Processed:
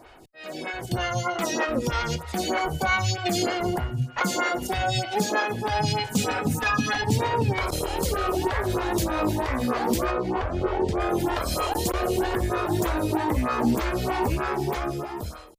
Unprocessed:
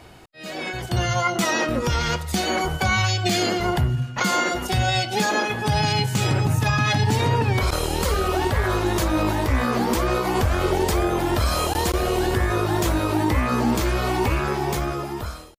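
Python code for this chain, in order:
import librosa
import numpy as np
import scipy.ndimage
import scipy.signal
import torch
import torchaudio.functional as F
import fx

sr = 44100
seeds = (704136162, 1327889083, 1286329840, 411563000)

y = fx.comb(x, sr, ms=4.1, depth=0.88, at=(6.11, 7.02))
y = fx.spacing_loss(y, sr, db_at_10k=22, at=(10.1, 10.99), fade=0.02)
y = fx.stagger_phaser(y, sr, hz=3.2)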